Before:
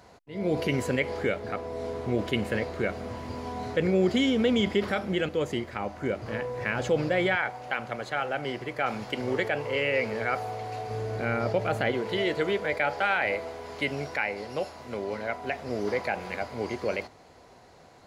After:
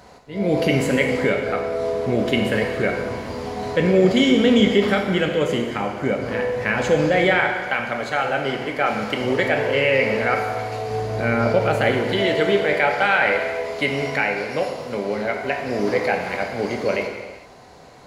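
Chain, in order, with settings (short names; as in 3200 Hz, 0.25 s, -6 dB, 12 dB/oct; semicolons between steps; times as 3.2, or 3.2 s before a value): non-linear reverb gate 0.47 s falling, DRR 2.5 dB; gain +6.5 dB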